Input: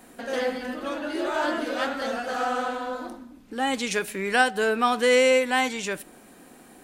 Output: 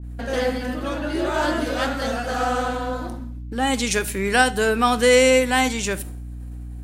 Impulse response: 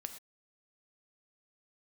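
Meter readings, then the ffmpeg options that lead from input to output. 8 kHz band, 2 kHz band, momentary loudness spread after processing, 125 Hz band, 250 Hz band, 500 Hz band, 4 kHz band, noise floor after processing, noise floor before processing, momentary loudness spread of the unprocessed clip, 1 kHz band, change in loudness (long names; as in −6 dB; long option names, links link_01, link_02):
+8.0 dB, +3.0 dB, 17 LU, can't be measured, +6.0 dB, +3.5 dB, +4.5 dB, −33 dBFS, −51 dBFS, 13 LU, +3.0 dB, +4.0 dB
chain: -filter_complex "[0:a]agate=range=-33dB:threshold=-41dB:ratio=3:detection=peak,aeval=exprs='val(0)+0.00891*(sin(2*PI*60*n/s)+sin(2*PI*2*60*n/s)/2+sin(2*PI*3*60*n/s)/3+sin(2*PI*4*60*n/s)/4+sin(2*PI*5*60*n/s)/5)':channel_layout=same,asplit=2[link_01][link_02];[link_02]lowshelf=frequency=350:gain=12[link_03];[1:a]atrim=start_sample=2205,asetrate=66150,aresample=44100[link_04];[link_03][link_04]afir=irnorm=-1:irlink=0,volume=-1.5dB[link_05];[link_01][link_05]amix=inputs=2:normalize=0,adynamicequalizer=threshold=0.0178:dfrequency=4300:dqfactor=0.7:tfrequency=4300:tqfactor=0.7:attack=5:release=100:ratio=0.375:range=3:mode=boostabove:tftype=highshelf"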